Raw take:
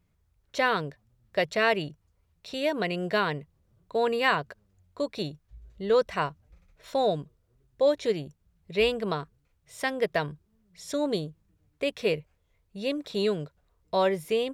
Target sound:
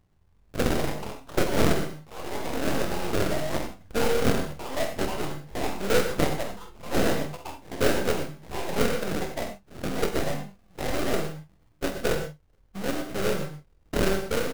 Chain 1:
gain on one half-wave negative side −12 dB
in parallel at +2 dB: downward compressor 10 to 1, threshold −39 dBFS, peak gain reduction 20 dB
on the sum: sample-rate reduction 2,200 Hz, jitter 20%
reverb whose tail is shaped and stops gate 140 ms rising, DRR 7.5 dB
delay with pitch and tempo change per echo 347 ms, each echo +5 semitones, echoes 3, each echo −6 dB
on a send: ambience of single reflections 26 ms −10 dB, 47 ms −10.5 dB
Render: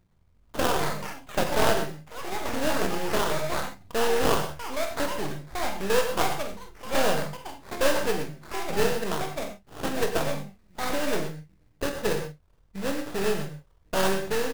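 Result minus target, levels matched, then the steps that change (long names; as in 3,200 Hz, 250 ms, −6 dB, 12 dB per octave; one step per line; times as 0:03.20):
sample-rate reduction: distortion −10 dB
change: sample-rate reduction 970 Hz, jitter 20%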